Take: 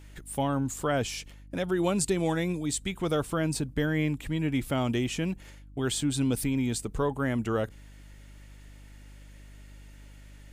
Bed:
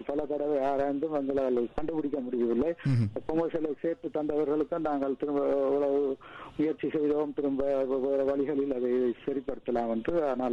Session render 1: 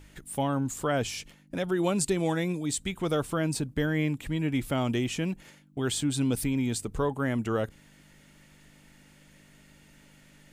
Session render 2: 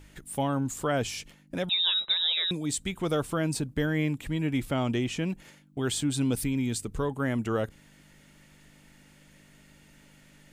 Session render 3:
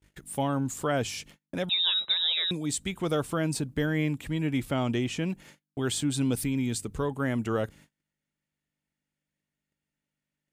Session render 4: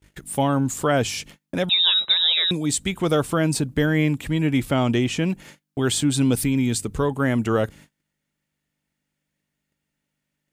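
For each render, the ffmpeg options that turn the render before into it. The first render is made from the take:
-af "bandreject=f=50:t=h:w=4,bandreject=f=100:t=h:w=4"
-filter_complex "[0:a]asettb=1/sr,asplit=3[s0][s1][s2];[s0]atrim=end=1.694[s3];[s1]atrim=start=1.69:end=2.51,asetpts=PTS-STARTPTS,afade=t=in:d=0.004:c=qsin,afade=t=out:st=0.816:d=0.004:c=qsin,lowpass=f=3400:t=q:w=0.5098,lowpass=f=3400:t=q:w=0.6013,lowpass=f=3400:t=q:w=0.9,lowpass=f=3400:t=q:w=2.563,afreqshift=-4000[s4];[s2]atrim=start=2.506[s5];[s3][s4]acrossfade=d=0.004:c1=hsin:c2=qsin[s6];[s6][s5]acrossfade=d=0.004:c1=qsin:c2=hsin,asettb=1/sr,asplit=3[s7][s8][s9];[s7]atrim=end=4.654[s10];[s8]atrim=start=4.65:end=5.3,asetpts=PTS-STARTPTS,afade=t=in:d=0.004:c=qsin,afade=t=out:st=0.646:d=0.004:c=qsin,highshelf=f=9700:g=-9[s11];[s9]atrim=start=5.296[s12];[s10][s11]acrossfade=d=0.004:c1=hsin:c2=qsin[s13];[s13][s12]acrossfade=d=0.004:c1=qsin:c2=hsin,asettb=1/sr,asplit=3[s14][s15][s16];[s14]atrim=end=6.424[s17];[s15]atrim=start=6.42:end=7.2,asetpts=PTS-STARTPTS,afade=t=in:d=0.004:c=qsin,afade=t=out:st=0.776:d=0.004:c=qsin,equalizer=f=740:t=o:w=1.4:g=-4.5[s18];[s16]atrim=start=7.196[s19];[s17][s18]acrossfade=d=0.004:c1=hsin:c2=qsin[s20];[s20][s19]acrossfade=d=0.004:c1=qsin:c2=hsin"
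-af "highpass=44,agate=range=0.0282:threshold=0.00282:ratio=16:detection=peak"
-af "volume=2.37"

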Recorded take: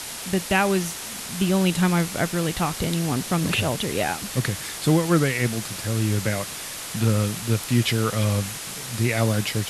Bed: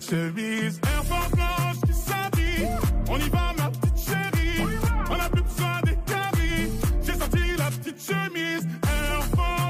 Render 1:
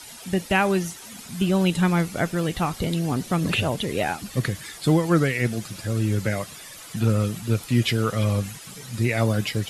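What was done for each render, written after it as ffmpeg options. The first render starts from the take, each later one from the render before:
-af "afftdn=nr=12:nf=-34"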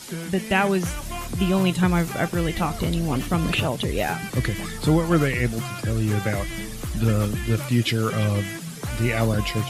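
-filter_complex "[1:a]volume=0.447[s0];[0:a][s0]amix=inputs=2:normalize=0"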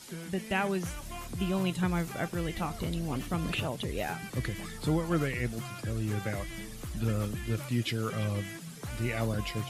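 -af "volume=0.335"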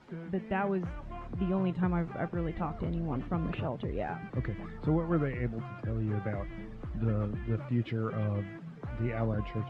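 -af "lowpass=1400"

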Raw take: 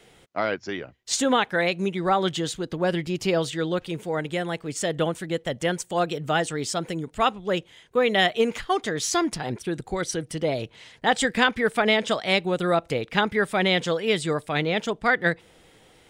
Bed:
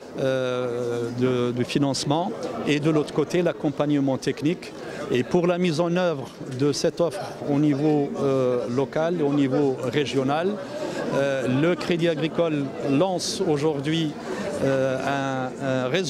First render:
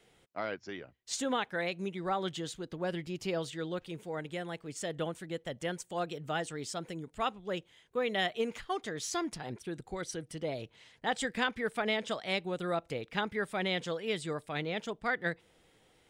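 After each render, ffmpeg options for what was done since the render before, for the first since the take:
-af "volume=0.282"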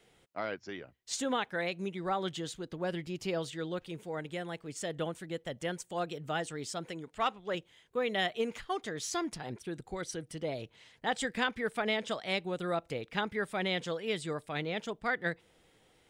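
-filter_complex "[0:a]asettb=1/sr,asplit=3[s0][s1][s2];[s0]atrim=end=6.884[s3];[s1]atrim=start=6.88:end=7.55,asetpts=PTS-STARTPTS,afade=t=in:d=0.004:c=qsin,afade=t=out:st=0.666:d=0.004:c=qsin,asplit=2[s4][s5];[s5]highpass=f=720:p=1,volume=2.82,asoftclip=type=tanh:threshold=0.106[s6];[s4][s6]amix=inputs=2:normalize=0,lowpass=f=4200:p=1,volume=0.501[s7];[s2]atrim=start=7.546[s8];[s3][s7]acrossfade=d=0.004:c1=hsin:c2=qsin[s9];[s9][s8]acrossfade=d=0.004:c1=qsin:c2=hsin"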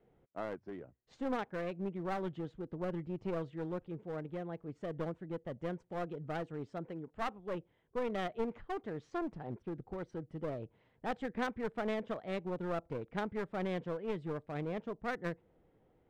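-af "adynamicsmooth=sensitivity=0.5:basefreq=930,aeval=exprs='clip(val(0),-1,0.0119)':c=same"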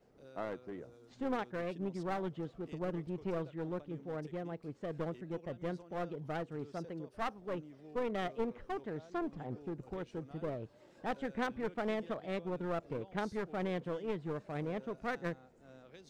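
-filter_complex "[1:a]volume=0.0224[s0];[0:a][s0]amix=inputs=2:normalize=0"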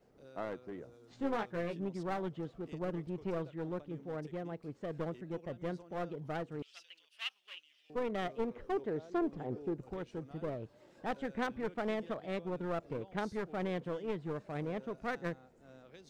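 -filter_complex "[0:a]asettb=1/sr,asplit=3[s0][s1][s2];[s0]atrim=end=1.064[s3];[s1]atrim=start=1.06:end=1.81,asetpts=PTS-STARTPTS,afade=t=in:d=0.004:c=qsin,afade=t=out:st=0.746:d=0.004:c=qsin,asplit=2[s4][s5];[s5]adelay=18,volume=0.562[s6];[s4][s6]amix=inputs=2:normalize=0,atrim=end_sample=33075[s7];[s2]atrim=start=1.806[s8];[s3][s7]acrossfade=d=0.004:c1=hsin:c2=qsin[s9];[s9][s8]acrossfade=d=0.004:c1=qsin:c2=hsin,asettb=1/sr,asplit=3[s10][s11][s12];[s10]atrim=end=6.624[s13];[s11]atrim=start=6.62:end=7.9,asetpts=PTS-STARTPTS,afade=t=in:d=0.004:c=qsin,afade=t=out:st=1.276:d=0.004:c=qsin,highpass=f=2900:t=q:w=5.8[s14];[s12]atrim=start=7.896[s15];[s13][s14]acrossfade=d=0.004:c1=hsin:c2=qsin[s16];[s16][s15]acrossfade=d=0.004:c1=qsin:c2=hsin,asettb=1/sr,asplit=3[s17][s18][s19];[s17]atrim=end=8.564[s20];[s18]atrim=start=8.56:end=9.77,asetpts=PTS-STARTPTS,afade=t=in:d=0.004:c=qsin,afade=t=out:st=1.206:d=0.004:c=qsin,equalizer=f=410:w=1.5:g=7[s21];[s19]atrim=start=9.766[s22];[s20][s21]acrossfade=d=0.004:c1=hsin:c2=qsin[s23];[s23][s22]acrossfade=d=0.004:c1=qsin:c2=hsin"

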